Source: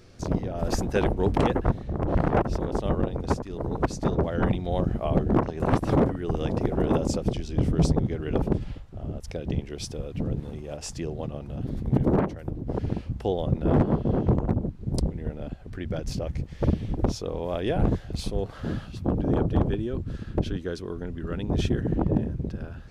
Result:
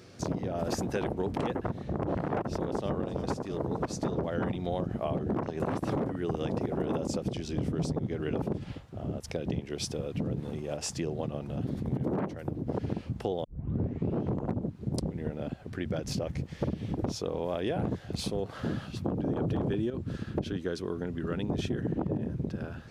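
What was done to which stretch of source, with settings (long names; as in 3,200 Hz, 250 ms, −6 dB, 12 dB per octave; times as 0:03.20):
0:02.46–0:02.92: delay throw 330 ms, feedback 70%, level −14.5 dB
0:13.44: tape start 0.80 s
0:19.42–0:19.90: clip gain +11.5 dB
whole clip: high-pass filter 110 Hz 12 dB per octave; brickwall limiter −16 dBFS; downward compressor 4 to 1, threshold −30 dBFS; level +2 dB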